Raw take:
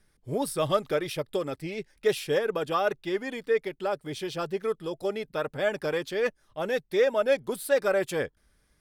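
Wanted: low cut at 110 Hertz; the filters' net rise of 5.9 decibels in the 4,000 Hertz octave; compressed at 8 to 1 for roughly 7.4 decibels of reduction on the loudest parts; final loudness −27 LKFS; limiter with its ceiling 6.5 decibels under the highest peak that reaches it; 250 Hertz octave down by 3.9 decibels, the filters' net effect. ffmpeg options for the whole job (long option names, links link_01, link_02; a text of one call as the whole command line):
ffmpeg -i in.wav -af "highpass=110,equalizer=frequency=250:width_type=o:gain=-6,equalizer=frequency=4000:width_type=o:gain=7.5,acompressor=threshold=-26dB:ratio=8,volume=7dB,alimiter=limit=-16dB:level=0:latency=1" out.wav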